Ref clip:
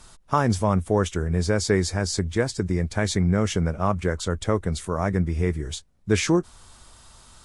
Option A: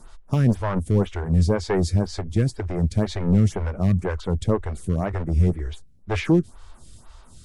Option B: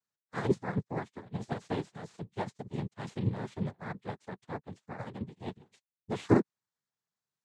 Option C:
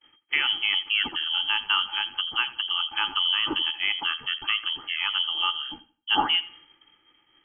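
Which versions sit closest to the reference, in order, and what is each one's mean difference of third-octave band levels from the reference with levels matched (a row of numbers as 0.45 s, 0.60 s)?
A, B, C; 6.0 dB, 9.0 dB, 17.5 dB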